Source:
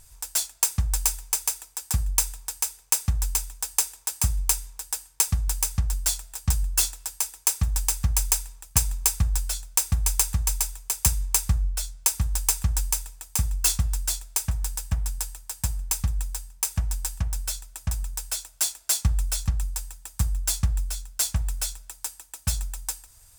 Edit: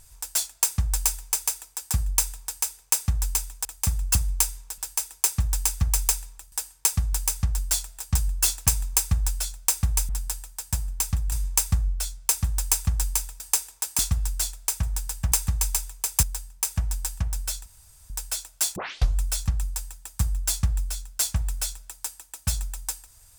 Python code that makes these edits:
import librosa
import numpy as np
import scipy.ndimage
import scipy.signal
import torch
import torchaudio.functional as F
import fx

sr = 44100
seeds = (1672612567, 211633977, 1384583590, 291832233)

y = fx.edit(x, sr, fx.swap(start_s=3.65, length_s=0.59, other_s=13.17, other_length_s=0.5),
    fx.move(start_s=7.01, length_s=1.74, to_s=4.87),
    fx.swap(start_s=10.18, length_s=0.91, other_s=15.0, other_length_s=1.23),
    fx.room_tone_fill(start_s=17.66, length_s=0.44),
    fx.tape_start(start_s=18.76, length_s=0.42), tone=tone)